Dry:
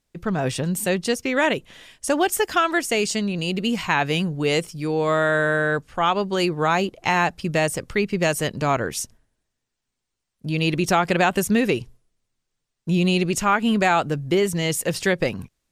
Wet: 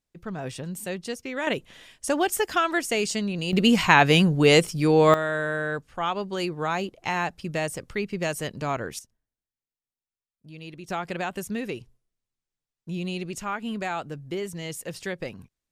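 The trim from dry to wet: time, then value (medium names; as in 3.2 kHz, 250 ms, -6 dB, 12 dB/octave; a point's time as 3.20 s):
-10 dB
from 1.47 s -3.5 dB
from 3.53 s +4.5 dB
from 5.14 s -7 dB
from 8.99 s -19.5 dB
from 10.90 s -11.5 dB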